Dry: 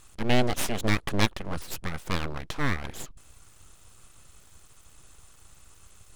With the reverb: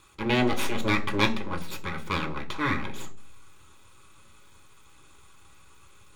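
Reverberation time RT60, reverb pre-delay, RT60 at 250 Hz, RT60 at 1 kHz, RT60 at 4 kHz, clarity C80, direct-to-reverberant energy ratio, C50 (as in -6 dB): 0.45 s, 3 ms, 0.70 s, 0.35 s, 0.45 s, 19.0 dB, 3.0 dB, 15.0 dB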